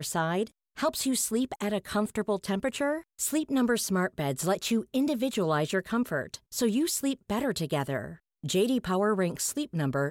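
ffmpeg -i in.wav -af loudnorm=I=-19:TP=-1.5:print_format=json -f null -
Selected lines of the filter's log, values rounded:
"input_i" : "-29.1",
"input_tp" : "-15.2",
"input_lra" : "1.2",
"input_thresh" : "-39.2",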